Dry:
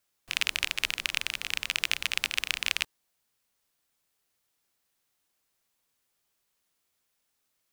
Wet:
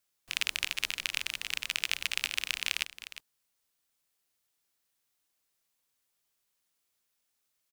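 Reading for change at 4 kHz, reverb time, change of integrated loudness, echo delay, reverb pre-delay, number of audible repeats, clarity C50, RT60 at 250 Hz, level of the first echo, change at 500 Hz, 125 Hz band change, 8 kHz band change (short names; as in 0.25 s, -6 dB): -2.5 dB, none, -3.0 dB, 0.357 s, none, 1, none, none, -13.5 dB, -5.0 dB, n/a, -1.5 dB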